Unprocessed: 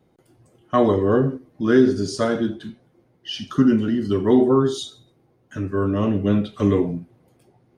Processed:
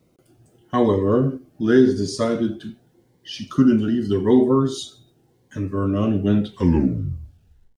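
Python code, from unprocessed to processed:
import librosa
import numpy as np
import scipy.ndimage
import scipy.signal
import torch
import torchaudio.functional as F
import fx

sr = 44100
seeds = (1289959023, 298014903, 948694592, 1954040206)

y = fx.tape_stop_end(x, sr, length_s=1.28)
y = fx.quant_dither(y, sr, seeds[0], bits=12, dither='none')
y = fx.notch_cascade(y, sr, direction='rising', hz=0.86)
y = y * 10.0 ** (1.0 / 20.0)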